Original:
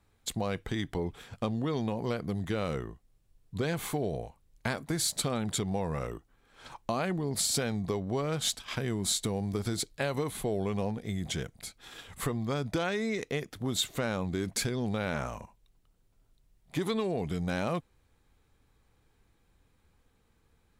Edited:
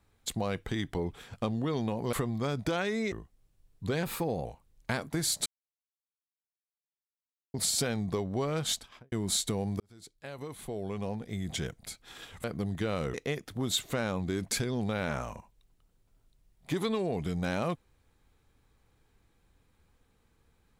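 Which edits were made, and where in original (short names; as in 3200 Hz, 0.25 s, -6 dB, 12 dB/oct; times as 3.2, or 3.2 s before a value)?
2.13–2.83 swap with 12.2–13.19
3.74–4.21 speed 112%
5.22–7.3 mute
8.43–8.88 studio fade out
9.56–11.44 fade in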